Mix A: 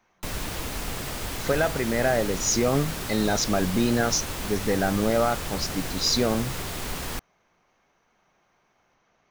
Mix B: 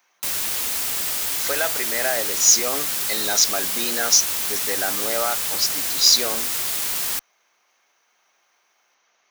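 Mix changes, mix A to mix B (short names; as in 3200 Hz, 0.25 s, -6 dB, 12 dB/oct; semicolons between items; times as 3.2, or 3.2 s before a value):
speech: add HPF 280 Hz 12 dB/oct; master: add tilt +4 dB/oct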